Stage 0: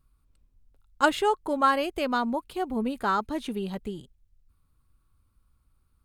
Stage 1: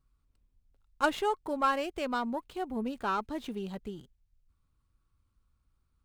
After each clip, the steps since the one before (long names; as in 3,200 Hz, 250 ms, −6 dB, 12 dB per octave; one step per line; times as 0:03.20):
windowed peak hold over 3 samples
level −5.5 dB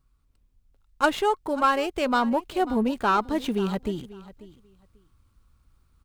speech leveller within 3 dB 0.5 s
repeating echo 541 ms, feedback 17%, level −18 dB
level +8.5 dB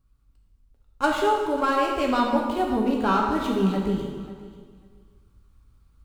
low-shelf EQ 390 Hz +5 dB
dense smooth reverb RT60 1.5 s, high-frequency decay 0.8×, DRR −1 dB
level −4 dB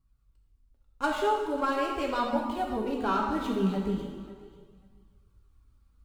flanger 0.4 Hz, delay 0.9 ms, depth 4 ms, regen −43%
level −2 dB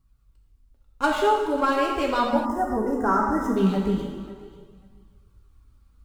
gain on a spectral selection 0:02.45–0:03.57, 2,100–5,000 Hz −25 dB
level +6 dB